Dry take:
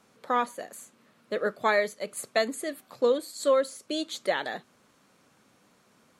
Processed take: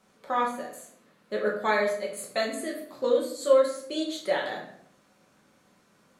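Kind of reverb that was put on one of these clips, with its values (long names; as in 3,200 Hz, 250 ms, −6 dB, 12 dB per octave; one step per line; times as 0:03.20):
rectangular room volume 120 cubic metres, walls mixed, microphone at 1.1 metres
level −4.5 dB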